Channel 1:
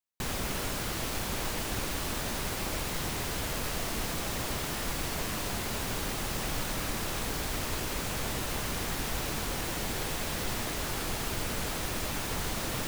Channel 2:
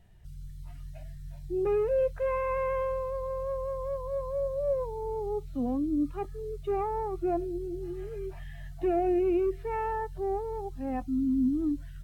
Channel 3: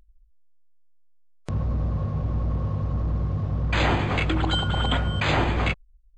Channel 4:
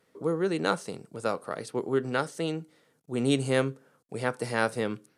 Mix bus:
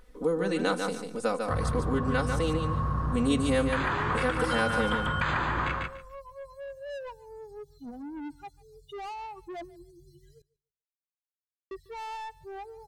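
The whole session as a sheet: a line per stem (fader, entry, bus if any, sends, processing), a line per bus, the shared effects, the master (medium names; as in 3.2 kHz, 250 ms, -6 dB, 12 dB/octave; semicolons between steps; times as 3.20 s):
mute
-11.0 dB, 2.25 s, muted 10.42–11.71 s, no send, echo send -22.5 dB, expander on every frequency bin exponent 3; overdrive pedal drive 28 dB, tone 6.3 kHz, clips at -21 dBFS
+1.5 dB, 0.00 s, no send, echo send -4.5 dB, high-order bell 1.3 kHz +12 dB 1.1 oct; compression, threshold -26 dBFS, peak gain reduction 12.5 dB; attacks held to a fixed rise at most 510 dB/s
+1.0 dB, 0.00 s, no send, echo send -6.5 dB, comb 4 ms, depth 96%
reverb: none
echo: feedback delay 145 ms, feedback 17%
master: compression 2:1, threshold -26 dBFS, peak gain reduction 7 dB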